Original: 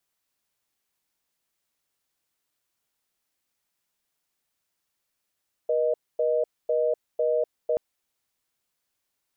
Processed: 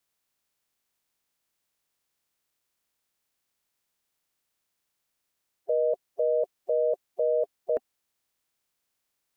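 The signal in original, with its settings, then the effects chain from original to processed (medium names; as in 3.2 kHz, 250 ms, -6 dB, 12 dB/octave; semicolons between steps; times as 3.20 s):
call progress tone reorder tone, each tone -23.5 dBFS 2.08 s
coarse spectral quantiser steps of 30 dB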